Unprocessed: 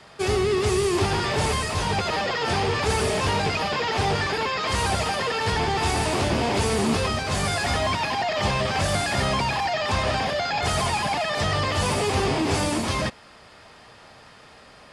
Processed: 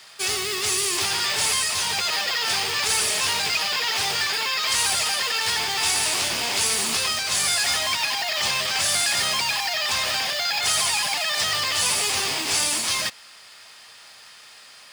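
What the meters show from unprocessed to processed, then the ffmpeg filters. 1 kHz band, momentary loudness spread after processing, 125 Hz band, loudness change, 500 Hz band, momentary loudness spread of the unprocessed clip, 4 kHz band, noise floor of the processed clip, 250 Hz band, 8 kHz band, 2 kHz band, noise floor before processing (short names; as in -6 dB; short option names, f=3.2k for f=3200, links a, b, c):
-4.5 dB, 3 LU, -16.5 dB, +2.5 dB, -10.0 dB, 2 LU, +7.5 dB, -47 dBFS, -13.5 dB, +10.5 dB, +2.5 dB, -49 dBFS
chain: -af "highpass=80,highshelf=f=3.4k:g=8.5,acrusher=bits=4:mode=log:mix=0:aa=0.000001,tiltshelf=f=870:g=-9.5,volume=-6dB"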